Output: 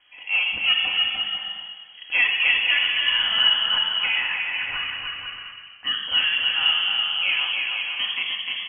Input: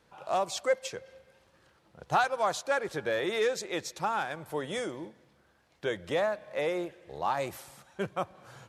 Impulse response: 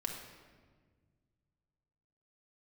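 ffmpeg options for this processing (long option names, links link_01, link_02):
-filter_complex "[0:a]asettb=1/sr,asplit=3[link_01][link_02][link_03];[link_01]atrim=end=3.674[link_04];[link_02]atrim=start=3.67:end=5.87,asetpts=PTS-STARTPTS,afade=type=in:duration=0.004:curve=qsin,afade=type=out:start_time=2.196:duration=0.004:curve=qsin,highpass=frequency=550:width=0.5412,highpass=frequency=550:width=1.3066[link_05];[link_03]atrim=start=5.866[link_06];[link_04][link_05]acrossfade=duration=0.004:curve1=hsin:curve2=qsin[link_07];[link_07][link_06]acrossfade=duration=0.004:curve1=qsin:curve2=hsin,asoftclip=type=tanh:threshold=-21dB,aecho=1:1:300|495|621.8|704.1|757.7:0.631|0.398|0.251|0.158|0.1[link_08];[1:a]atrim=start_sample=2205[link_09];[link_08][link_09]afir=irnorm=-1:irlink=0,lowpass=frequency=2900:width_type=q:width=0.5098,lowpass=frequency=2900:width_type=q:width=0.6013,lowpass=frequency=2900:width_type=q:width=0.9,lowpass=frequency=2900:width_type=q:width=2.563,afreqshift=-3400,volume=7dB"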